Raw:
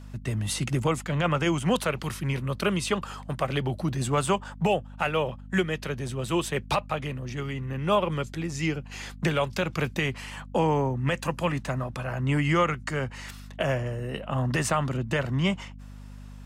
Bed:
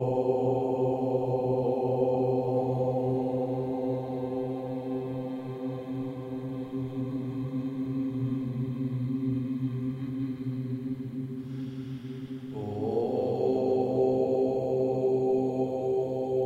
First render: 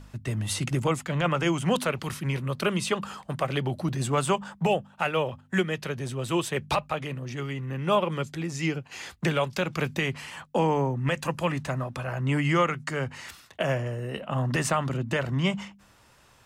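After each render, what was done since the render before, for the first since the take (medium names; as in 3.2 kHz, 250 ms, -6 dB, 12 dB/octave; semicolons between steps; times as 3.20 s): de-hum 50 Hz, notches 5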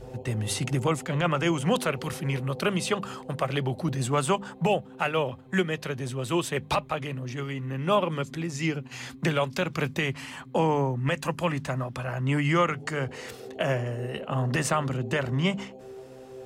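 add bed -15.5 dB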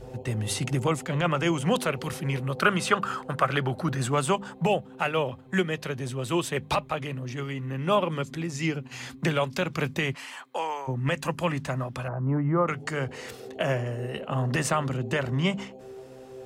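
2.58–4.09 s: peaking EQ 1.4 kHz +11.5 dB; 10.14–10.87 s: high-pass 430 Hz -> 1.1 kHz; 12.08–12.68 s: low-pass 1.2 kHz 24 dB/octave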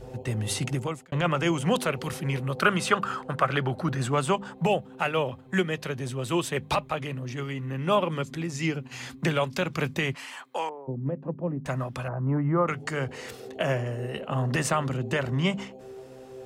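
0.65–1.12 s: fade out; 3.04–4.58 s: treble shelf 7.1 kHz -6 dB; 10.69–11.66 s: Butterworth band-pass 270 Hz, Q 0.67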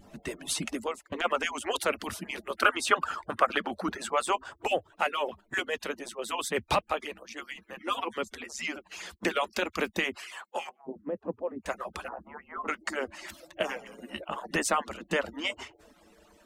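harmonic-percussive separation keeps percussive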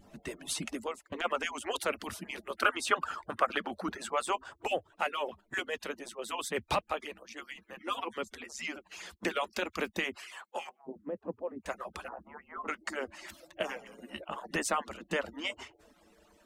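trim -4 dB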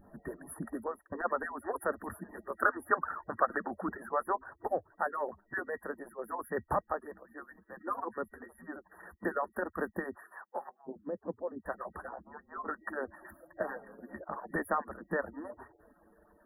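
FFT band-reject 1.9–9.8 kHz; peaking EQ 14 kHz -4.5 dB 1.4 oct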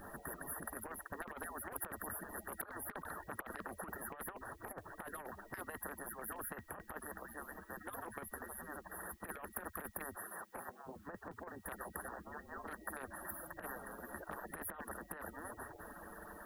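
compressor with a negative ratio -37 dBFS, ratio -0.5; spectrum-flattening compressor 4:1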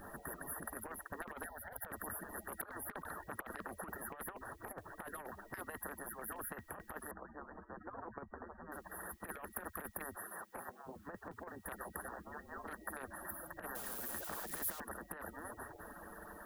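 1.46–1.87 s: static phaser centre 1.7 kHz, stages 8; 7.11–8.72 s: low-pass 1.4 kHz 24 dB/octave; 13.75–14.80 s: zero-crossing glitches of -37.5 dBFS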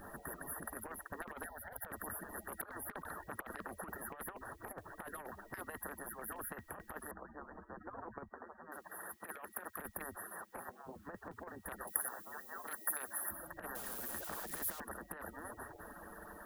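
8.29–9.79 s: high-pass 380 Hz 6 dB/octave; 11.87–13.29 s: RIAA curve recording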